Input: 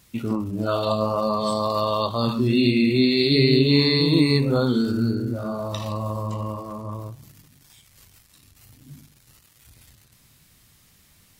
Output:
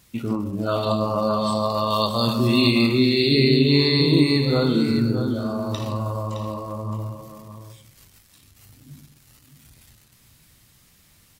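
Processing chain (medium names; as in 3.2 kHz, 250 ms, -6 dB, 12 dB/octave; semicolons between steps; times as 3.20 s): 1.90–2.87 s: treble shelf 3.6 kHz +11 dB; delay 616 ms -9 dB; reverberation RT60 0.40 s, pre-delay 113 ms, DRR 15 dB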